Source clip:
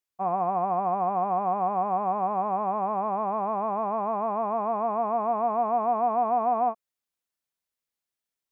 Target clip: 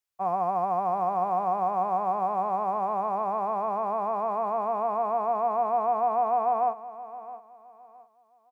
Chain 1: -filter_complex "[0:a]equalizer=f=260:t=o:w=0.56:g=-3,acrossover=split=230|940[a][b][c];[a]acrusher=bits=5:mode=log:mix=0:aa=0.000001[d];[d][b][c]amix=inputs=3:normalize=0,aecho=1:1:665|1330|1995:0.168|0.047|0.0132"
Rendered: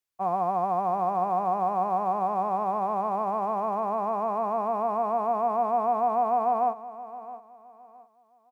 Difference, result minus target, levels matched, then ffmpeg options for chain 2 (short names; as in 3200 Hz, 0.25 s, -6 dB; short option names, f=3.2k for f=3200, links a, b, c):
250 Hz band +3.5 dB
-filter_complex "[0:a]equalizer=f=260:t=o:w=0.56:g=-12,acrossover=split=230|940[a][b][c];[a]acrusher=bits=5:mode=log:mix=0:aa=0.000001[d];[d][b][c]amix=inputs=3:normalize=0,aecho=1:1:665|1330|1995:0.168|0.047|0.0132"